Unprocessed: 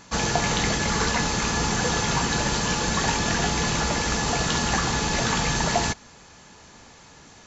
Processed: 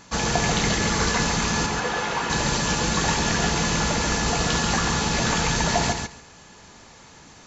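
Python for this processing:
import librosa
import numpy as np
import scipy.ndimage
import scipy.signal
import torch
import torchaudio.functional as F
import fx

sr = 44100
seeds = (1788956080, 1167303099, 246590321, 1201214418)

y = fx.bass_treble(x, sr, bass_db=-14, treble_db=-11, at=(1.66, 2.3))
y = fx.echo_feedback(y, sr, ms=138, feedback_pct=16, wet_db=-5.0)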